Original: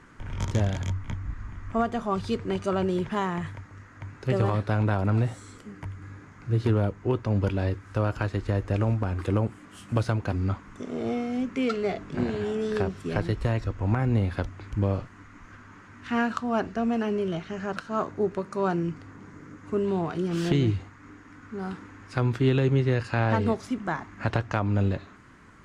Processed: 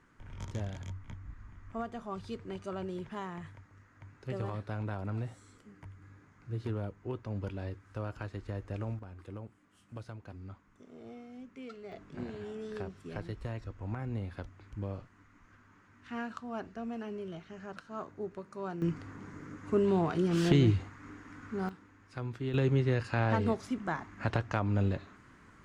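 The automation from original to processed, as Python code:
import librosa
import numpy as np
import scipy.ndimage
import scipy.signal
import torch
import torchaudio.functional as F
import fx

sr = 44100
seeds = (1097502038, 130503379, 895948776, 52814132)

y = fx.gain(x, sr, db=fx.steps((0.0, -12.5), (8.99, -19.5), (11.92, -13.0), (18.82, -1.0), (21.69, -13.5), (22.54, -5.0)))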